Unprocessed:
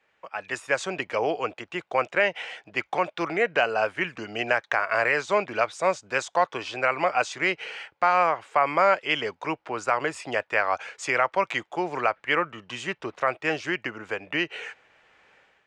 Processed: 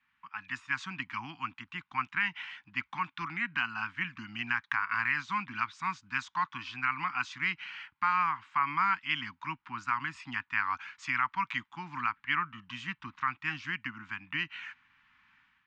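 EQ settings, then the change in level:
elliptic band-stop filter 260–1,000 Hz, stop band 60 dB
high-frequency loss of the air 160 metres
−3.0 dB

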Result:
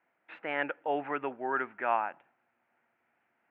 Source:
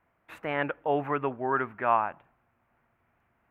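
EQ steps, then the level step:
loudspeaker in its box 340–3,300 Hz, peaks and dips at 430 Hz −4 dB, 630 Hz −4 dB, 1,100 Hz −9 dB
0.0 dB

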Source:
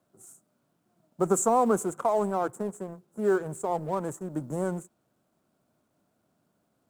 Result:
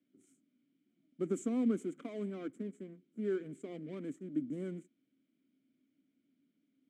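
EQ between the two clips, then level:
formant filter i
+6.0 dB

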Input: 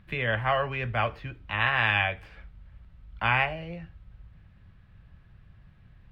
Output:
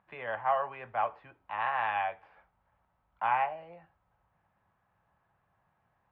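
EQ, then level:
resonant band-pass 860 Hz, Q 2.9
+2.5 dB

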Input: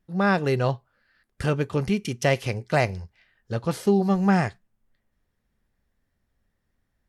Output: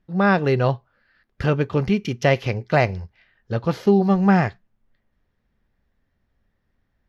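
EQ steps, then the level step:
moving average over 5 samples
+4.0 dB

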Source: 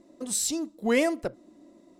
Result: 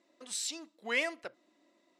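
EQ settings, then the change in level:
resonant band-pass 2,500 Hz, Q 0.93
0.0 dB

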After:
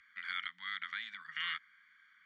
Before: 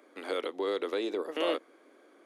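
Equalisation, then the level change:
Savitzky-Golay smoothing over 41 samples
inverse Chebyshev band-stop filter 300–710 Hz, stop band 70 dB
high-frequency loss of the air 92 metres
+15.0 dB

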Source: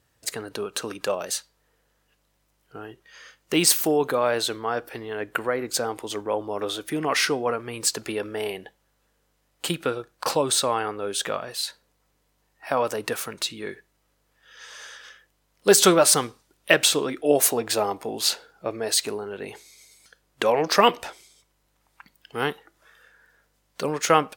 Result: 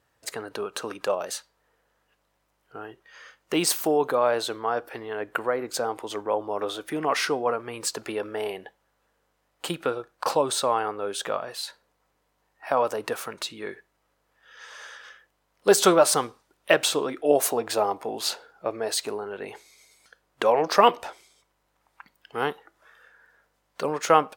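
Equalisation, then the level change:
dynamic equaliser 1,900 Hz, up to −4 dB, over −37 dBFS, Q 1.2
parametric band 940 Hz +9 dB 2.9 octaves
−6.5 dB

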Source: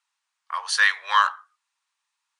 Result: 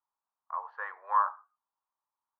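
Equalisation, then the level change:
low-pass filter 1,000 Hz 24 dB per octave
mains-hum notches 50/100/150/200/250/300/350/400 Hz
−1.5 dB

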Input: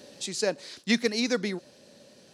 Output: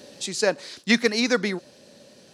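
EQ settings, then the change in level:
dynamic equaliser 1,300 Hz, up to +6 dB, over −41 dBFS, Q 0.81
+3.5 dB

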